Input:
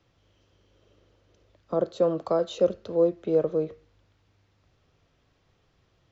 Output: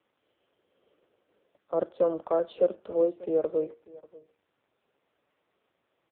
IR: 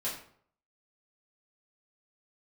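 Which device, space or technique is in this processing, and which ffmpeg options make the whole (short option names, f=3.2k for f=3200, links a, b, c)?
satellite phone: -filter_complex "[0:a]asettb=1/sr,asplit=3[a][b][c];[a]atrim=end=1.834[d];[b]atrim=start=1.83:end=3.54,asetpts=PTS-STARTPTS,afade=t=in:d=0.004:c=qsin,afade=t=out:st=1.706:d=0.004:c=qsin,adynamicequalizer=threshold=0.0224:dfrequency=470:dqfactor=2.1:tfrequency=470:tqfactor=2.1:attack=5:release=100:ratio=0.375:range=1.5:mode=cutabove:tftype=bell[e];[c]atrim=start=3.536[f];[d][e]acrossfade=d=0.004:c1=hsin:c2=qsin[g];[g][f]acrossfade=d=0.004:c1=qsin:c2=hsin,highpass=310,lowpass=3.1k,aecho=1:1:590:0.0944" -ar 8000 -c:a libopencore_amrnb -b:a 5900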